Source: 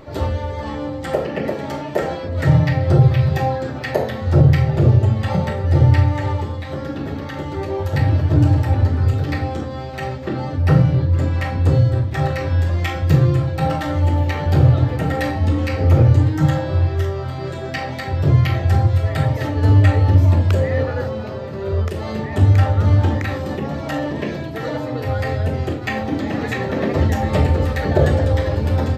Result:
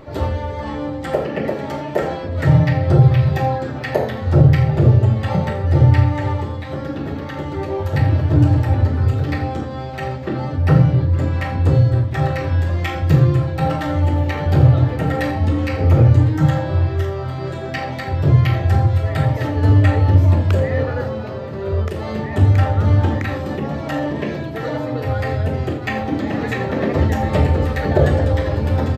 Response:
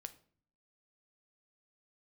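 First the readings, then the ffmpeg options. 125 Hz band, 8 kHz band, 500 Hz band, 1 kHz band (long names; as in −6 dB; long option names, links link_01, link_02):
+0.5 dB, can't be measured, +0.5 dB, +1.0 dB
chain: -filter_complex "[0:a]aecho=1:1:85:0.168,asplit=2[link_01][link_02];[1:a]atrim=start_sample=2205,lowpass=4000[link_03];[link_02][link_03]afir=irnorm=-1:irlink=0,volume=-3dB[link_04];[link_01][link_04]amix=inputs=2:normalize=0,volume=-2dB"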